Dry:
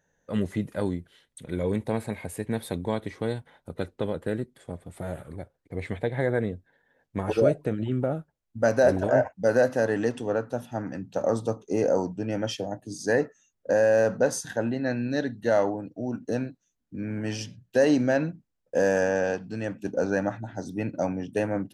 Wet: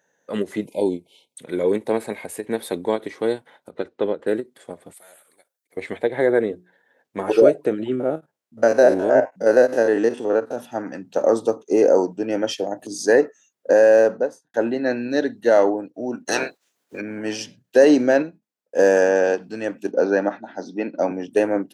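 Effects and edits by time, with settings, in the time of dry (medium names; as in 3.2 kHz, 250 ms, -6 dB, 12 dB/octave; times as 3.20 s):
0.66–1.35 s: spectral selection erased 1–2.1 kHz
3.71–4.27 s: distance through air 110 m
4.93–5.77 s: differentiator
6.47–7.41 s: hum notches 60/120/180/240/300/360/420 Hz
7.95–10.58 s: spectrogram pixelated in time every 50 ms
12.67–13.15 s: upward compressor, threshold -28 dBFS
13.90–14.54 s: studio fade out
16.26–17.00 s: spectral peaks clipped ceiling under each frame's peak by 27 dB
18.22–18.79 s: feedback comb 210 Hz, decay 0.19 s
19.91–21.11 s: Chebyshev band-pass 180–5200 Hz, order 3
whole clip: high-pass 290 Hz 12 dB/octave; dynamic bell 370 Hz, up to +7 dB, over -38 dBFS, Q 1.7; endings held to a fixed fall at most 410 dB/s; trim +5.5 dB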